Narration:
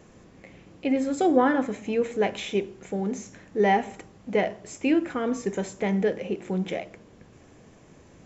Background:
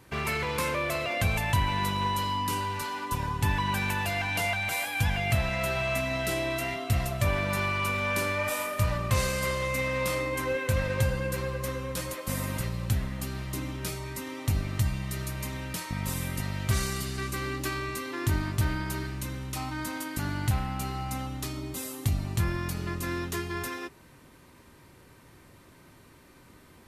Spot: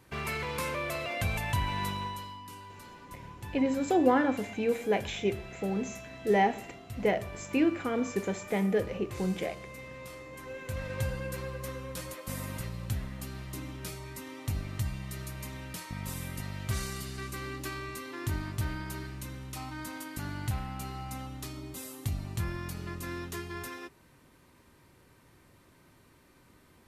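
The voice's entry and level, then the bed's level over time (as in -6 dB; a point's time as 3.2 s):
2.70 s, -3.5 dB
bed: 1.9 s -4.5 dB
2.41 s -16.5 dB
10.25 s -16.5 dB
11.05 s -6 dB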